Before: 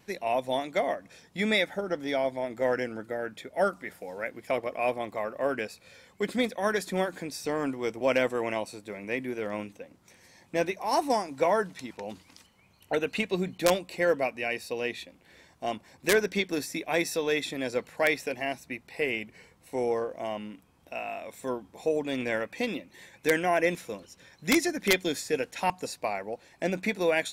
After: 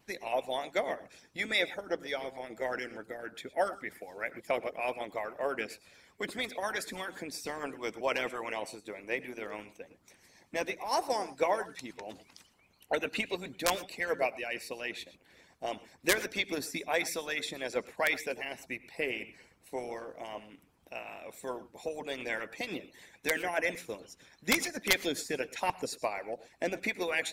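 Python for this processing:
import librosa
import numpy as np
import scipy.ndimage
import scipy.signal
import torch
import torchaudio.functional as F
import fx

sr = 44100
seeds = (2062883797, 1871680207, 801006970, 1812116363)

y = fx.rev_gated(x, sr, seeds[0], gate_ms=140, shape='rising', drr_db=11.5)
y = fx.hpss(y, sr, part='harmonic', gain_db=-17)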